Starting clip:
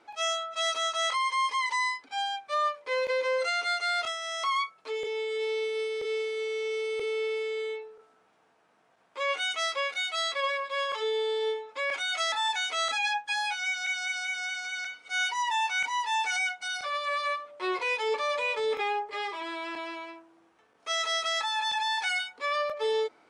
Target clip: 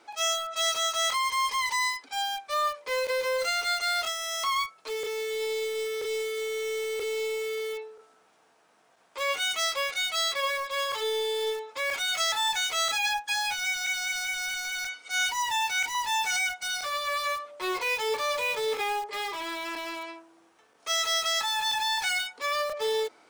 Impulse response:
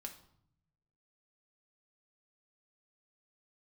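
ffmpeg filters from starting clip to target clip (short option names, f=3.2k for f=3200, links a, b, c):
-filter_complex "[0:a]bass=f=250:g=-4,treble=f=4k:g=8,asplit=2[a][b];[b]aeval=exprs='(mod(35.5*val(0)+1,2)-1)/35.5':c=same,volume=-9.5dB[c];[a][c]amix=inputs=2:normalize=0,asettb=1/sr,asplit=3[d][e][f];[d]atrim=end=15.464[g];[e]atrim=start=15.46:end=15.95,asetpts=PTS-STARTPTS,afade=t=in:d=0.004:c=qsin,afade=t=out:st=0.486:d=0.004:c=qsin,asuperstop=centerf=1100:order=4:qfactor=3.6[h];[f]atrim=start=15.946[i];[g][h]acrossfade=d=0.004:c1=hsin:c2=qsin[j];[j][i]acrossfade=d=0.004:c1=qsin:c2=hsin"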